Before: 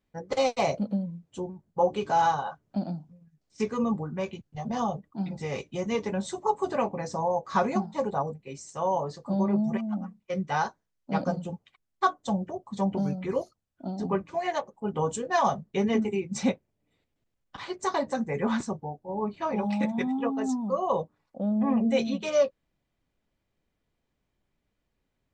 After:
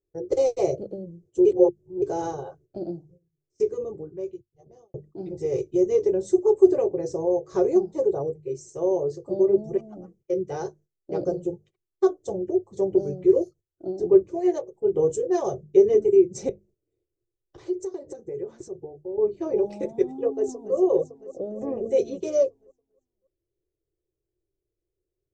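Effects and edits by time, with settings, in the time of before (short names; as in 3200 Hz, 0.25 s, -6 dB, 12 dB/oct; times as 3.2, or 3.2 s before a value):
1.45–2.02 reverse
2.91–4.94 fade out
16.49–19.18 compressor, threshold -38 dBFS
20.26–20.75 echo throw 0.28 s, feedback 70%, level -13 dB
whole clip: notches 50/100/150/200 Hz; gate -52 dBFS, range -11 dB; EQ curve 130 Hz 0 dB, 240 Hz -23 dB, 350 Hz +13 dB, 950 Hz -20 dB, 3800 Hz -19 dB, 6300 Hz -5 dB, 10000 Hz -12 dB; gain +5.5 dB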